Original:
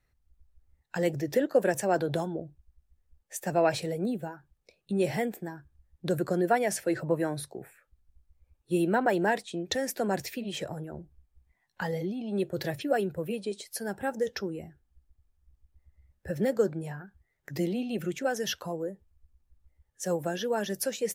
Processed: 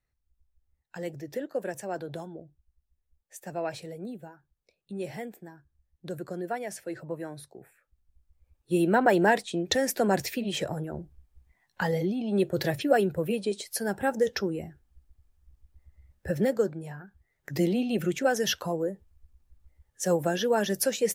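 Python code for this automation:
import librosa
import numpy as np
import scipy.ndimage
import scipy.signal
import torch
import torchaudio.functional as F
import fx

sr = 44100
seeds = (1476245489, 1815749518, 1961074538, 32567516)

y = fx.gain(x, sr, db=fx.line((7.42, -8.0), (9.13, 4.5), (16.29, 4.5), (16.79, -3.0), (17.66, 4.5)))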